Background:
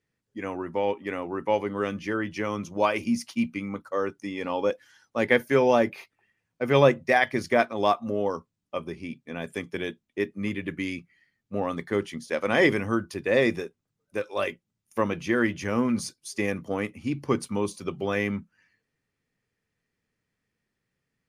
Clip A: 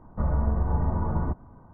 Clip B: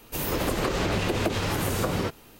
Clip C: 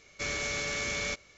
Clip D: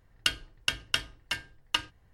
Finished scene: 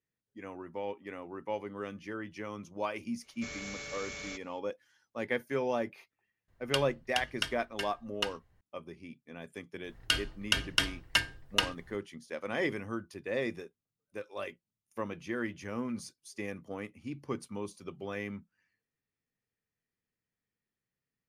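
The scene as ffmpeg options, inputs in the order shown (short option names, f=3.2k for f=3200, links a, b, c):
-filter_complex "[4:a]asplit=2[a][b];[0:a]volume=-11.5dB[c];[b]alimiter=level_in=13dB:limit=-1dB:release=50:level=0:latency=1[d];[3:a]atrim=end=1.37,asetpts=PTS-STARTPTS,volume=-9.5dB,afade=t=in:d=0.004:c=hsin,afade=t=out:st=1.366:d=0.004:c=hsin,adelay=3220[e];[a]atrim=end=2.13,asetpts=PTS-STARTPTS,volume=-5.5dB,afade=t=in:d=0.004:c=hsin,afade=t=out:st=2.126:d=0.004:c=hsin,adelay=6480[f];[d]atrim=end=2.13,asetpts=PTS-STARTPTS,volume=-7.5dB,afade=t=in:d=0.004:c=hsin,afade=t=out:st=2.126:d=0.004:c=hsin,adelay=9840[g];[c][e][f][g]amix=inputs=4:normalize=0"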